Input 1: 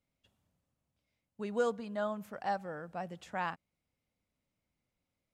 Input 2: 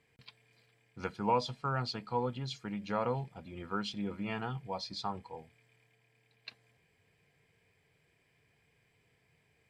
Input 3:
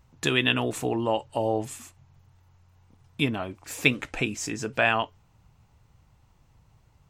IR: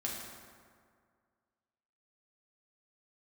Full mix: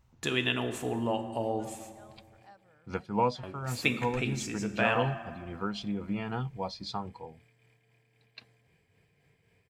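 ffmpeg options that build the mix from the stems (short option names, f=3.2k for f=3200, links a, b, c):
-filter_complex "[0:a]equalizer=f=340:t=o:w=2.4:g=-6.5,volume=-18dB,asplit=2[a][b];[1:a]lowshelf=f=500:g=5.5,tremolo=f=3.8:d=0.38,adelay=1900,volume=1.5dB[c];[2:a]volume=-9.5dB,asplit=3[d][e][f];[d]atrim=end=2.39,asetpts=PTS-STARTPTS,afade=t=out:st=2.386:d=0.004:c=hsin[g];[e]atrim=start=2.39:end=3.43,asetpts=PTS-STARTPTS,volume=0[h];[f]atrim=start=3.43,asetpts=PTS-STARTPTS,afade=t=in:d=0.004:c=hsin[i];[g][h][i]concat=n=3:v=0:a=1,asplit=2[j][k];[k]volume=-5dB[l];[b]apad=whole_len=511129[m];[c][m]sidechaincompress=threshold=-56dB:ratio=4:attack=10:release=793[n];[3:a]atrim=start_sample=2205[o];[l][o]afir=irnorm=-1:irlink=0[p];[a][n][j][p]amix=inputs=4:normalize=0"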